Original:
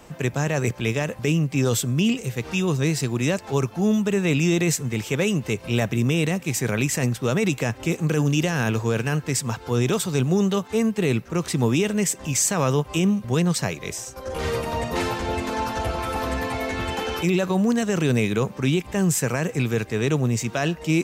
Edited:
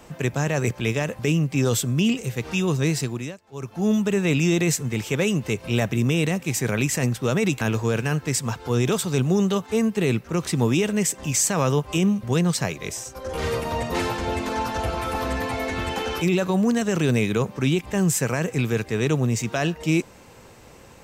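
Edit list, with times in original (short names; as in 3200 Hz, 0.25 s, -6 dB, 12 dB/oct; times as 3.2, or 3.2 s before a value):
2.97–3.91 dip -21.5 dB, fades 0.40 s
7.61–8.62 cut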